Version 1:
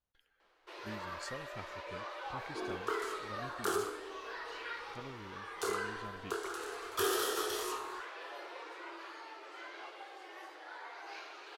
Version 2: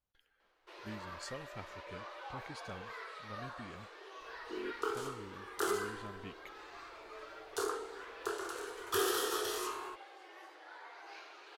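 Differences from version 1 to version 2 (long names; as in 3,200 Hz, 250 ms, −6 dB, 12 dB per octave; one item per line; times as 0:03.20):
first sound −4.0 dB
second sound: entry +1.95 s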